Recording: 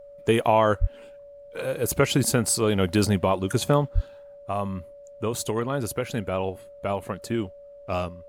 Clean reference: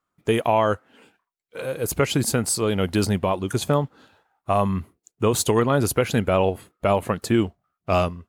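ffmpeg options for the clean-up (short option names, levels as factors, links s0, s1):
-filter_complex "[0:a]bandreject=f=570:w=30,asplit=3[s0][s1][s2];[s0]afade=t=out:st=0.8:d=0.02[s3];[s1]highpass=f=140:w=0.5412,highpass=f=140:w=1.3066,afade=t=in:st=0.8:d=0.02,afade=t=out:st=0.92:d=0.02[s4];[s2]afade=t=in:st=0.92:d=0.02[s5];[s3][s4][s5]amix=inputs=3:normalize=0,asplit=3[s6][s7][s8];[s6]afade=t=out:st=3.94:d=0.02[s9];[s7]highpass=f=140:w=0.5412,highpass=f=140:w=1.3066,afade=t=in:st=3.94:d=0.02,afade=t=out:st=4.06:d=0.02[s10];[s8]afade=t=in:st=4.06:d=0.02[s11];[s9][s10][s11]amix=inputs=3:normalize=0,agate=range=0.0891:threshold=0.0126,asetnsamples=n=441:p=0,asendcmd='4.35 volume volume 7.5dB',volume=1"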